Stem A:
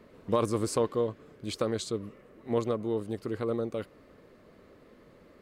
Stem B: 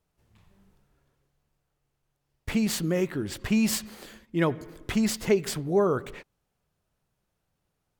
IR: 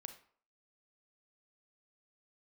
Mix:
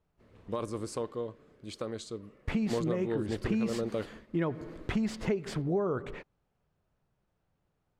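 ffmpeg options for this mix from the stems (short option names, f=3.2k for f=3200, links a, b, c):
-filter_complex "[0:a]adelay=200,volume=1.5dB,asplit=2[a][b];[b]volume=-16.5dB[c];[1:a]lowpass=f=1.7k:p=1,volume=1.5dB,asplit=2[d][e];[e]apad=whole_len=247624[f];[a][f]sidechaingate=range=-11dB:threshold=-49dB:ratio=16:detection=peak[g];[2:a]atrim=start_sample=2205[h];[c][h]afir=irnorm=-1:irlink=0[i];[g][d][i]amix=inputs=3:normalize=0,lowpass=11k,acompressor=threshold=-27dB:ratio=6"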